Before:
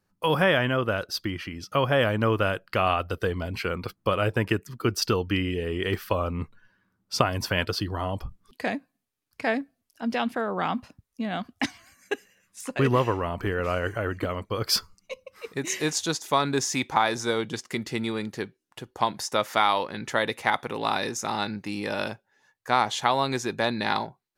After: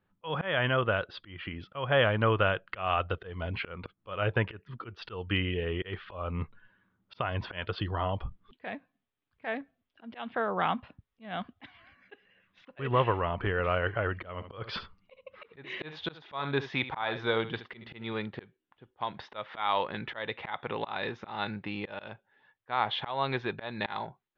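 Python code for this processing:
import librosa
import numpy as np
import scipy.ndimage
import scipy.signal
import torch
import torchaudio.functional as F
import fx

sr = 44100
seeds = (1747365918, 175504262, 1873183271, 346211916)

y = fx.echo_single(x, sr, ms=71, db=-13.5, at=(14.33, 18.13))
y = scipy.signal.sosfilt(scipy.signal.ellip(4, 1.0, 60, 3500.0, 'lowpass', fs=sr, output='sos'), y)
y = fx.dynamic_eq(y, sr, hz=270.0, q=1.6, threshold_db=-41.0, ratio=4.0, max_db=-7)
y = fx.auto_swell(y, sr, attack_ms=245.0)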